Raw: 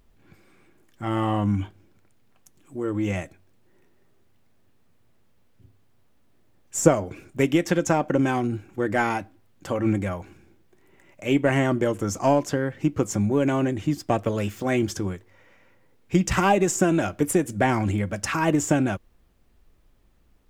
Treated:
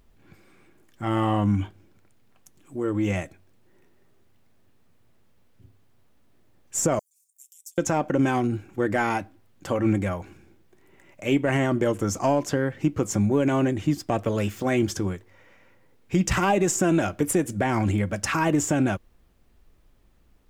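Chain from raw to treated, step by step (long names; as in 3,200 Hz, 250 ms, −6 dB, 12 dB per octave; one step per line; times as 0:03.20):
brickwall limiter −12.5 dBFS, peak gain reduction 10.5 dB
0:06.99–0:07.78: inverse Chebyshev high-pass filter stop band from 1,400 Hz, stop band 80 dB
level +1 dB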